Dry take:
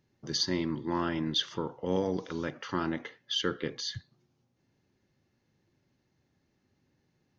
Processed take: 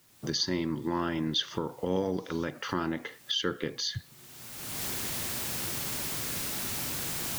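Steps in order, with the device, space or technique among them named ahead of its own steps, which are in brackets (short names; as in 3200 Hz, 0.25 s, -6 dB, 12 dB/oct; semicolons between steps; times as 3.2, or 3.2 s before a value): cheap recorder with automatic gain (white noise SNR 29 dB; recorder AGC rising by 30 dB/s)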